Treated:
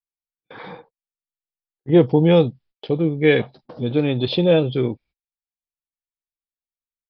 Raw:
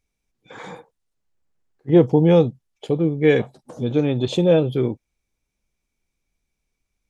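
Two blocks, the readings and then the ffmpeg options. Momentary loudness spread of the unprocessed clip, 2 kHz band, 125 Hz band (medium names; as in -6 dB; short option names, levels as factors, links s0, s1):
17 LU, +3.5 dB, 0.0 dB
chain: -af "aresample=11025,aresample=44100,agate=range=0.0251:threshold=0.00398:ratio=16:detection=peak,adynamicequalizer=threshold=0.0224:dfrequency=1700:dqfactor=0.7:tfrequency=1700:tqfactor=0.7:attack=5:release=100:ratio=0.375:range=3:mode=boostabove:tftype=highshelf"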